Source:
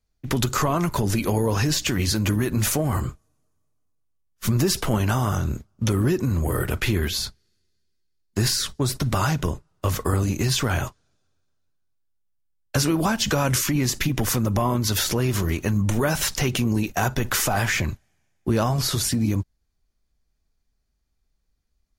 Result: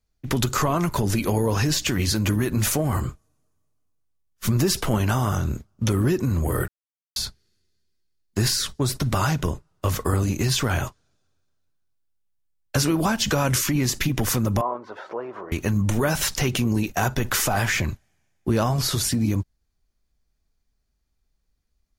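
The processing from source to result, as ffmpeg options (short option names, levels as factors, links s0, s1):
-filter_complex "[0:a]asettb=1/sr,asplit=3[s0][s1][s2];[s0]atrim=end=14.614[s3];[s1]atrim=start=14.61:end=15.52,asetpts=PTS-STARTPTS,afade=t=in:d=0.004:c=qsin,afade=t=out:st=0.906:d=0.004:c=qsin,asuperpass=centerf=750:order=4:qfactor=0.96[s4];[s2]atrim=start=15.516[s5];[s3][s4]acrossfade=d=0.004:c1=hsin:c2=qsin[s6];[s6][s5]acrossfade=d=0.004:c1=qsin:c2=hsin,asplit=3[s7][s8][s9];[s7]atrim=end=6.68,asetpts=PTS-STARTPTS,afade=t=out:st=6.676:d=0.004:c=hsin[s10];[s8]atrim=start=6.68:end=7.16,asetpts=PTS-STARTPTS,volume=0[s11];[s9]atrim=start=7.16,asetpts=PTS-STARTPTS,afade=t=in:d=0.004:c=hsin[s12];[s10][s11][s12]concat=n=3:v=0:a=1"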